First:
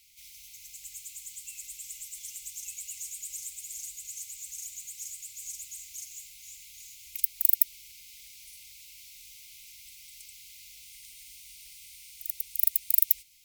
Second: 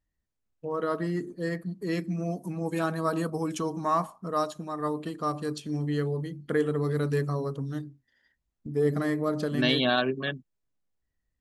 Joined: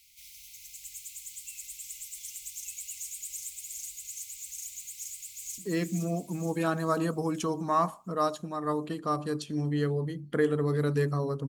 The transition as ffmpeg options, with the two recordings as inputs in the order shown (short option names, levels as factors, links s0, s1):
-filter_complex "[0:a]apad=whole_dur=11.48,atrim=end=11.48,atrim=end=5.582[s0];[1:a]atrim=start=1.738:end=7.64[s1];[s0][s1]acrossfade=d=0.004:c1=hsin:c2=hsin,asplit=2[s2][s3];[s3]afade=t=in:st=5.02:d=0.01,afade=t=out:st=5.58:d=0.01,aecho=0:1:470|940|1410|1880|2350|2820|3290:0.562341|0.309288|0.170108|0.0935595|0.0514577|0.0283018|0.015566[s4];[s2][s4]amix=inputs=2:normalize=0"